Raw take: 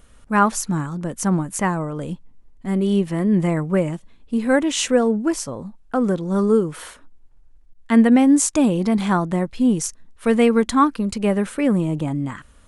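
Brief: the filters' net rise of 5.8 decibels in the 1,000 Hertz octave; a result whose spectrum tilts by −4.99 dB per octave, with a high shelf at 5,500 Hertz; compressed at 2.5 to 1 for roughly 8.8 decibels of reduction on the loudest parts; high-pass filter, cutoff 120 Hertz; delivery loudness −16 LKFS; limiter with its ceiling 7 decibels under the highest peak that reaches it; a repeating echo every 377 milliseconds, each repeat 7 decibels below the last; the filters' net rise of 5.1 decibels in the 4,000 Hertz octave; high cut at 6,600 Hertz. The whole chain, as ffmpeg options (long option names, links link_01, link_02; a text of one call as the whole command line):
ffmpeg -i in.wav -af "highpass=120,lowpass=6600,equalizer=frequency=1000:width_type=o:gain=6.5,equalizer=frequency=4000:width_type=o:gain=4.5,highshelf=frequency=5500:gain=6.5,acompressor=threshold=-19dB:ratio=2.5,alimiter=limit=-14.5dB:level=0:latency=1,aecho=1:1:377|754|1131|1508|1885:0.447|0.201|0.0905|0.0407|0.0183,volume=7.5dB" out.wav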